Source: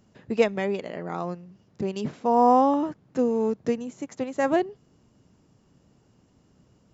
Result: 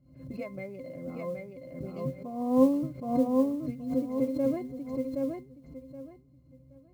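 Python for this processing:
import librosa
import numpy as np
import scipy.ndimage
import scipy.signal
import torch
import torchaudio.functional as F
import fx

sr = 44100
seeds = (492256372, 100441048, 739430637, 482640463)

p1 = fx.peak_eq(x, sr, hz=1100.0, db=-9.5, octaves=0.23)
p2 = fx.octave_resonator(p1, sr, note='C', decay_s=0.16)
p3 = p2 + fx.echo_feedback(p2, sr, ms=772, feedback_pct=22, wet_db=-3.5, dry=0)
p4 = fx.mod_noise(p3, sr, seeds[0], snr_db=31)
p5 = fx.low_shelf(p4, sr, hz=240.0, db=4.5)
p6 = fx.pre_swell(p5, sr, db_per_s=93.0)
y = p6 * librosa.db_to_amplitude(3.5)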